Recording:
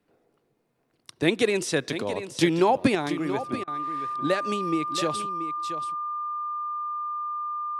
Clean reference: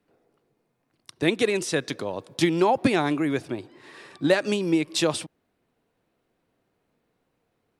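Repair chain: band-stop 1.2 kHz, Q 30; interpolate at 3.64 s, 34 ms; inverse comb 680 ms -11 dB; trim 0 dB, from 2.95 s +5 dB

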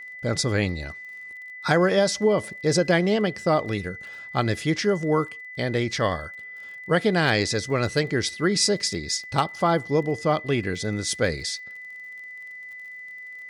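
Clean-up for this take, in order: clip repair -9.5 dBFS; de-click; band-stop 2 kHz, Q 30

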